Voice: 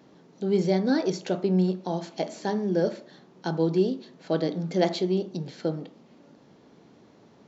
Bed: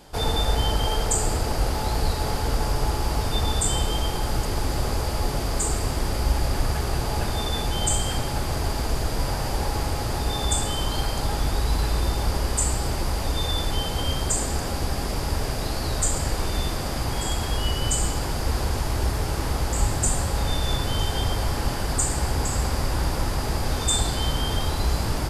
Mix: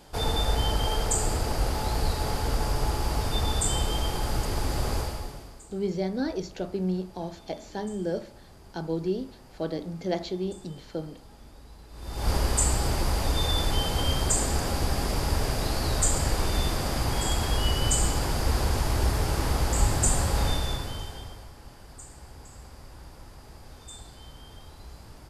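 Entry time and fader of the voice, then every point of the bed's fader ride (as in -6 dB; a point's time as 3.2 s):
5.30 s, -5.5 dB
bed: 4.99 s -3 dB
5.67 s -26 dB
11.88 s -26 dB
12.3 s -0.5 dB
20.46 s -0.5 dB
21.53 s -22 dB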